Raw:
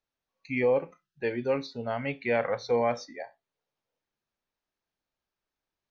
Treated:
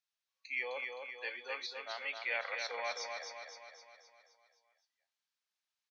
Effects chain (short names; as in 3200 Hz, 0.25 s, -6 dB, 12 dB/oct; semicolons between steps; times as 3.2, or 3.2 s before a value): HPF 610 Hz 12 dB/oct; differentiator; 0.65–3.04 whine 3400 Hz -61 dBFS; air absorption 100 m; feedback echo 0.259 s, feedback 53%, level -5 dB; gain +8.5 dB